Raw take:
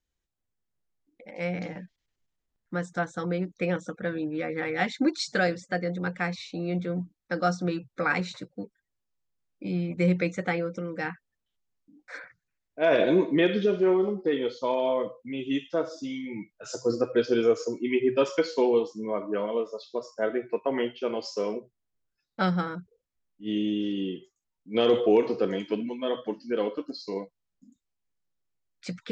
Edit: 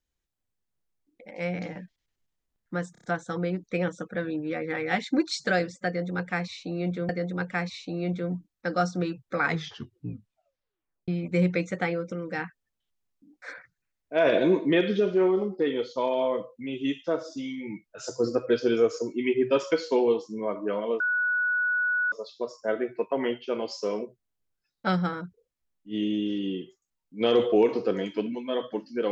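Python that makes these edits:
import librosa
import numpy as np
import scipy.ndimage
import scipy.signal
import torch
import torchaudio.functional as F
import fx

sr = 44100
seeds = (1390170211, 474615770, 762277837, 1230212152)

y = fx.edit(x, sr, fx.stutter(start_s=2.92, slice_s=0.03, count=5),
    fx.repeat(start_s=5.75, length_s=1.22, count=2),
    fx.tape_stop(start_s=8.06, length_s=1.68),
    fx.insert_tone(at_s=19.66, length_s=1.12, hz=1470.0, db=-22.5), tone=tone)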